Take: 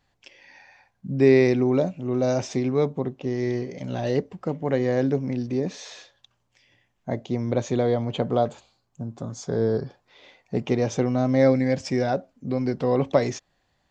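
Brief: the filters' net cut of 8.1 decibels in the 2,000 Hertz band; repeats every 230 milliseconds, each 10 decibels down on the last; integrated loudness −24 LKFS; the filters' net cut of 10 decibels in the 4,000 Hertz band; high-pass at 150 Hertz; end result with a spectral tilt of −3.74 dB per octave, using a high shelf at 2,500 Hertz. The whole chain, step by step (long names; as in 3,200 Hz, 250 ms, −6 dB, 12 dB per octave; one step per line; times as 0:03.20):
high-pass filter 150 Hz
parametric band 2,000 Hz −5.5 dB
high-shelf EQ 2,500 Hz −6 dB
parametric band 4,000 Hz −6 dB
repeating echo 230 ms, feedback 32%, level −10 dB
level +1 dB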